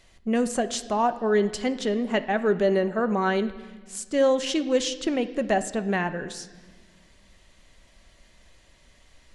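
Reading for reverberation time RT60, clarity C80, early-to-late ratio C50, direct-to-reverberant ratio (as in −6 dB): 1.6 s, 15.5 dB, 13.5 dB, 9.5 dB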